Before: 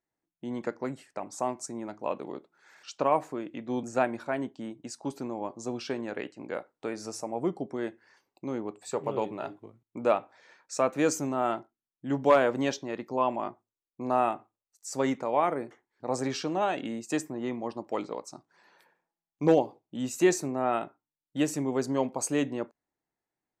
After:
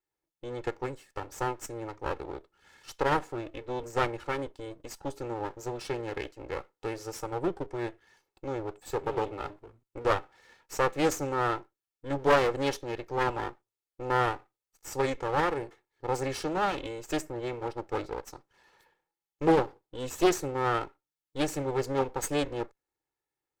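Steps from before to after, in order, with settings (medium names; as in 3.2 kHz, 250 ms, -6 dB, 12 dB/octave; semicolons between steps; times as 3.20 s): comb filter that takes the minimum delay 2.3 ms; loudspeaker Doppler distortion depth 0.42 ms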